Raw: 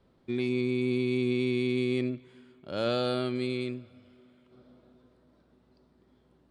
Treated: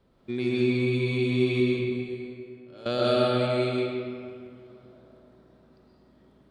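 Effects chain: 1.6–2.86 resonator 150 Hz, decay 1.3 s, mix 90%; reverb RT60 2.3 s, pre-delay 85 ms, DRR -5 dB

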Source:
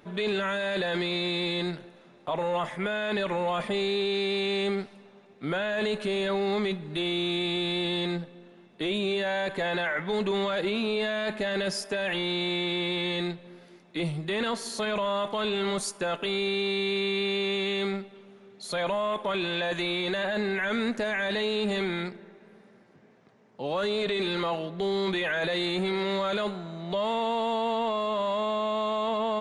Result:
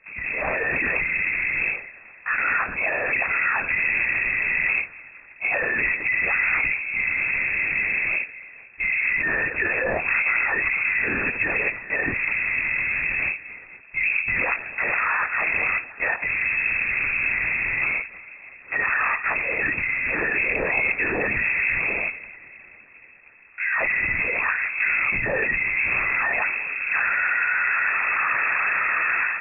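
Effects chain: AGC gain up to 11 dB; limiter -13 dBFS, peak gain reduction 4.5 dB; formant shift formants +5 st; LPC vocoder at 8 kHz whisper; inverted band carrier 2600 Hz; gain -2.5 dB

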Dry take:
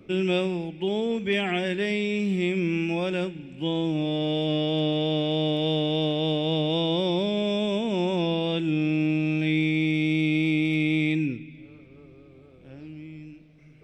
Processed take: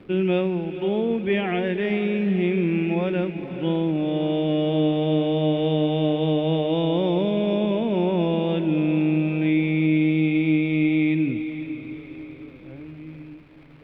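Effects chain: crackle 580/s -41 dBFS; air absorption 440 m; notches 50/100/150 Hz; diffused feedback echo 0.493 s, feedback 49%, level -10.5 dB; gain +4 dB

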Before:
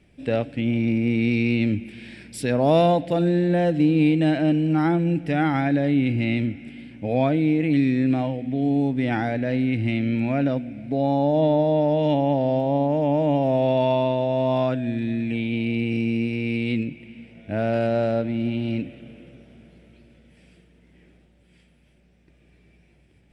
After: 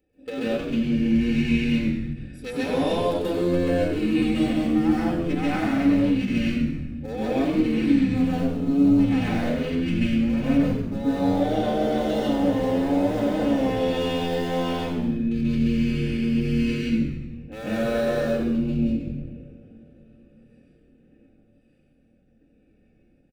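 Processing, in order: Wiener smoothing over 41 samples; RIAA curve recording; comb 3.9 ms, depth 96%; compressor, threshold -25 dBFS, peak gain reduction 10.5 dB; frequency-shifting echo 95 ms, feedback 50%, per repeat -84 Hz, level -6 dB; reverb, pre-delay 0.13 s, DRR -6 dB; ending taper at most 210 dB/s; gain -7 dB

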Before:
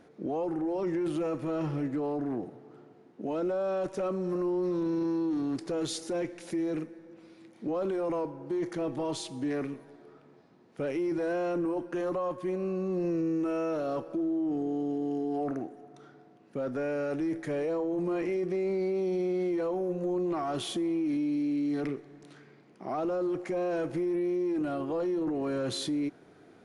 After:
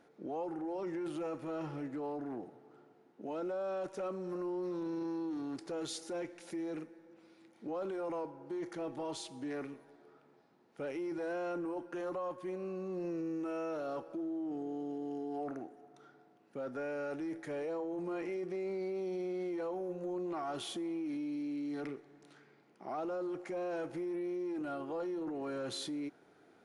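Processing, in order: low shelf 210 Hz -8.5 dB; small resonant body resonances 840/1400 Hz, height 6 dB; gain -6 dB

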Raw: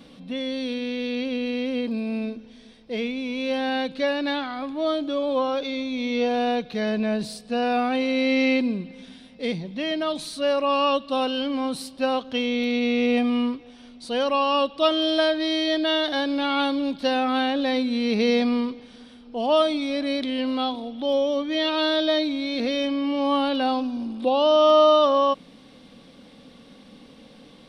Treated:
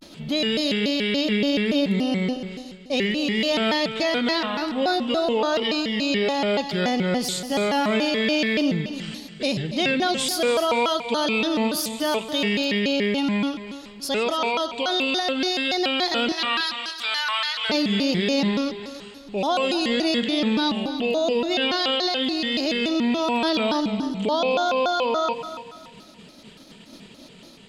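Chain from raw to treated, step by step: 16.31–17.69 HPF 1100 Hz 24 dB/oct; expander -42 dBFS; high shelf 3100 Hz +10 dB; in parallel at -1 dB: compressor, threshold -35 dBFS, peak gain reduction 21 dB; on the sum: limiter -15 dBFS, peak gain reduction 10 dB; vocal rider within 4 dB 2 s; on a send: multi-head echo 0.143 s, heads first and second, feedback 41%, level -14 dB; on the sum: shaped vibrato square 3.5 Hz, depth 250 cents

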